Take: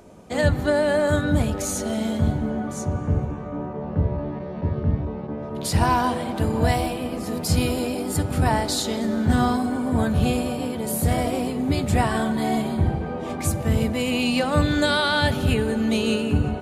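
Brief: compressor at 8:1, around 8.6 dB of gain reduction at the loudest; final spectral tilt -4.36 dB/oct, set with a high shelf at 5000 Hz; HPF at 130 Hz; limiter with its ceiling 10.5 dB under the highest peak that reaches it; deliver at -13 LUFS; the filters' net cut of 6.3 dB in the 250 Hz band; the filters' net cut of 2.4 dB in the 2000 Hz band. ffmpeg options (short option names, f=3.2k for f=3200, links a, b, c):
-af "highpass=130,equalizer=f=250:t=o:g=-7,equalizer=f=2k:t=o:g=-4.5,highshelf=f=5k:g=7.5,acompressor=threshold=-27dB:ratio=8,volume=21.5dB,alimiter=limit=-4dB:level=0:latency=1"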